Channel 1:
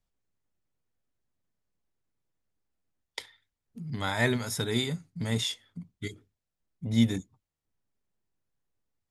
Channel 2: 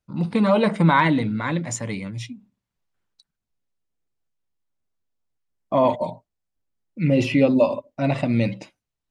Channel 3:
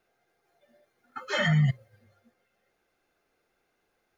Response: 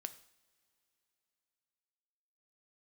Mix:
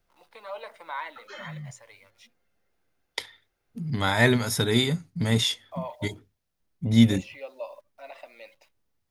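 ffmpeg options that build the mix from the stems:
-filter_complex "[0:a]acontrast=36,volume=1dB,asplit=2[a][b];[1:a]highpass=f=560:w=0.5412,highpass=f=560:w=1.3066,acrusher=bits=9:dc=4:mix=0:aa=0.000001,volume=-16dB[c];[2:a]acompressor=threshold=-39dB:ratio=2,volume=1.5dB[d];[b]apad=whole_len=184184[e];[d][e]sidechaingate=range=-8dB:threshold=-51dB:ratio=16:detection=peak[f];[a][c][f]amix=inputs=3:normalize=0,equalizer=f=7.6k:t=o:w=0.31:g=-5"

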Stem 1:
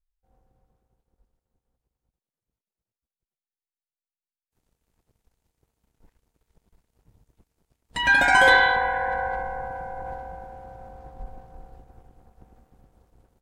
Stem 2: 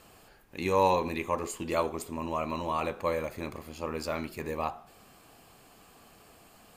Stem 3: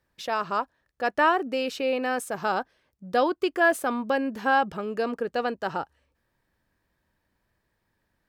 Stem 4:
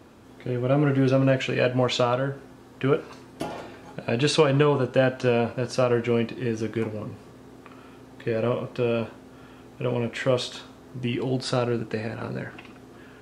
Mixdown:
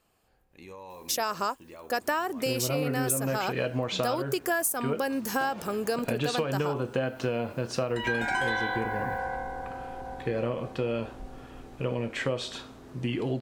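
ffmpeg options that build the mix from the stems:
-filter_complex "[0:a]volume=-5dB[a];[1:a]alimiter=limit=-21dB:level=0:latency=1,volume=-14.5dB[b];[2:a]aexciter=amount=4.6:drive=4.3:freq=5.2k,highshelf=f=5.1k:g=8,adelay=900,volume=2dB[c];[3:a]adelay=2000,volume=-1dB[d];[a][b][c][d]amix=inputs=4:normalize=0,acompressor=threshold=-25dB:ratio=6"

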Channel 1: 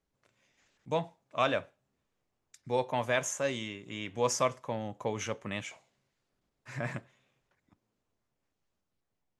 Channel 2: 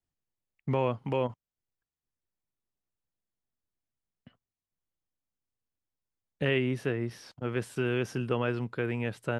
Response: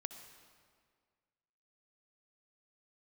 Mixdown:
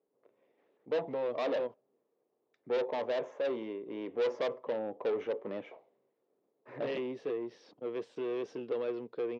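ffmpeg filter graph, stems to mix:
-filter_complex "[0:a]lowpass=1.4k,volume=-2dB[a];[1:a]bandreject=f=400:w=12,adelay=400,volume=-11dB[b];[a][b]amix=inputs=2:normalize=0,equalizer=f=410:t=o:w=1.5:g=11.5,asoftclip=type=tanh:threshold=-30dB,highpass=270,equalizer=f=460:t=q:w=4:g=5,equalizer=f=1.5k:t=q:w=4:g=-6,equalizer=f=3.6k:t=q:w=4:g=4,lowpass=f=5.7k:w=0.5412,lowpass=f=5.7k:w=1.3066"

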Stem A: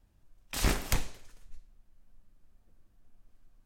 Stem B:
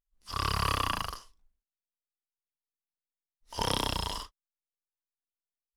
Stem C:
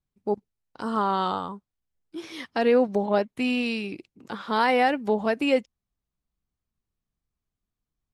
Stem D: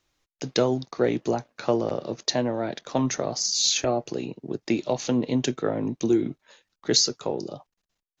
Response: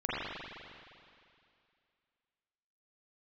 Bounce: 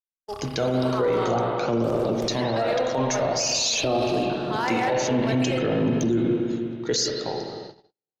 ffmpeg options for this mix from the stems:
-filter_complex "[0:a]adelay=1300,volume=-17.5dB[a];[1:a]acompressor=threshold=-36dB:ratio=6,volume=-3.5dB[b];[2:a]asoftclip=type=hard:threshold=-13.5dB,highpass=580,volume=-6.5dB,asplit=2[c][d];[d]volume=-6.5dB[e];[3:a]aphaser=in_gain=1:out_gain=1:delay=2.2:decay=0.49:speed=0.51:type=triangular,afade=t=out:st=6.76:d=0.8:silence=0.334965,asplit=2[f][g];[g]volume=-8dB[h];[4:a]atrim=start_sample=2205[i];[e][h]amix=inputs=2:normalize=0[j];[j][i]afir=irnorm=-1:irlink=0[k];[a][b][c][f][k]amix=inputs=5:normalize=0,agate=range=-50dB:threshold=-38dB:ratio=16:detection=peak,alimiter=limit=-15dB:level=0:latency=1:release=15"

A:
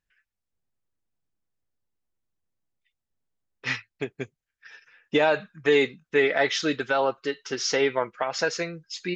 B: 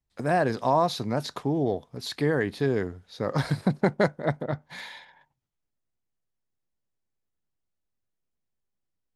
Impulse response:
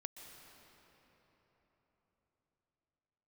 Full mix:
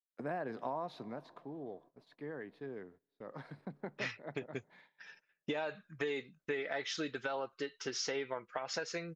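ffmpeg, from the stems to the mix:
-filter_complex "[0:a]adelay=350,volume=-6.5dB[a];[1:a]acrossover=split=150 3200:gain=0.0794 1 0.126[b][c][d];[b][c][d]amix=inputs=3:normalize=0,volume=-9.5dB,afade=t=out:st=0.9:d=0.31:silence=0.316228,asplit=2[e][f];[f]volume=-16.5dB[g];[2:a]atrim=start_sample=2205[h];[g][h]afir=irnorm=-1:irlink=0[i];[a][e][i]amix=inputs=3:normalize=0,agate=range=-19dB:threshold=-59dB:ratio=16:detection=peak,acompressor=threshold=-35dB:ratio=5"

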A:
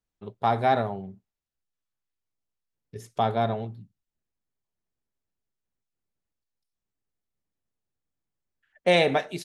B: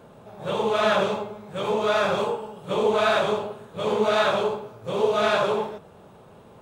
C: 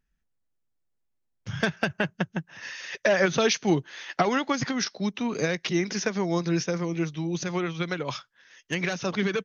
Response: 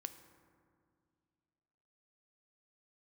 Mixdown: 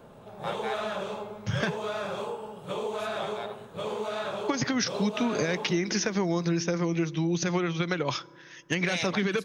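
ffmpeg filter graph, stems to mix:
-filter_complex "[0:a]highpass=1.4k,volume=-4dB[a];[1:a]acrossover=split=450|5200[b][c][d];[b]acompressor=threshold=-37dB:ratio=4[e];[c]acompressor=threshold=-32dB:ratio=4[f];[d]acompressor=threshold=-53dB:ratio=4[g];[e][f][g]amix=inputs=3:normalize=0,volume=-2dB[h];[2:a]alimiter=limit=-17dB:level=0:latency=1:release=103,volume=3dB,asplit=3[i][j][k];[i]atrim=end=1.77,asetpts=PTS-STARTPTS,afade=t=out:st=1.766:d=0.004:c=hsin[l];[j]atrim=start=1.77:end=4.48,asetpts=PTS-STARTPTS,volume=0[m];[k]atrim=start=4.48,asetpts=PTS-STARTPTS,afade=t=in:d=0.004:c=hsin[n];[l][m][n]concat=n=3:v=0:a=1,asplit=2[o][p];[p]volume=-9dB[q];[3:a]atrim=start_sample=2205[r];[q][r]afir=irnorm=-1:irlink=0[s];[a][h][o][s]amix=inputs=4:normalize=0,acompressor=threshold=-23dB:ratio=6"

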